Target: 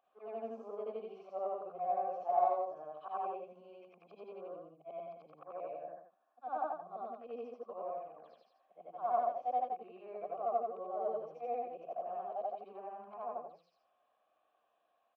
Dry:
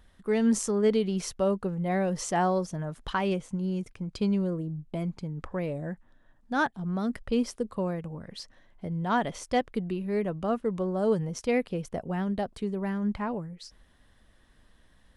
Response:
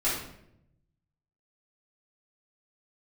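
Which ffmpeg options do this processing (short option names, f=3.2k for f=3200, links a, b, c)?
-filter_complex "[0:a]afftfilt=real='re':imag='-im':win_size=8192:overlap=0.75,acrossover=split=290 6800:gain=0.2 1 0.251[a][b][c];[a][b][c]amix=inputs=3:normalize=0,acrossover=split=1000[d][e];[d]crystalizer=i=8:c=0[f];[e]acompressor=threshold=-55dB:ratio=6[g];[f][g]amix=inputs=2:normalize=0,asplit=3[h][i][j];[h]bandpass=f=730:t=q:w=8,volume=0dB[k];[i]bandpass=f=1.09k:t=q:w=8,volume=-6dB[l];[j]bandpass=f=2.44k:t=q:w=8,volume=-9dB[m];[k][l][m]amix=inputs=3:normalize=0,adynamicsmooth=sensitivity=7:basefreq=4.6k,asplit=2[n][o];[o]aecho=0:1:80:0.596[p];[n][p]amix=inputs=2:normalize=0,volume=5dB"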